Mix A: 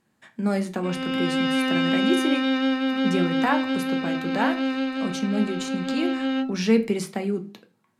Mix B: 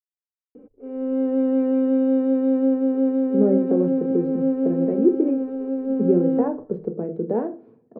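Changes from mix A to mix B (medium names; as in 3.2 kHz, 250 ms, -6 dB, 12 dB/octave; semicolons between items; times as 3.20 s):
speech: entry +2.95 s; master: add resonant low-pass 450 Hz, resonance Q 5.1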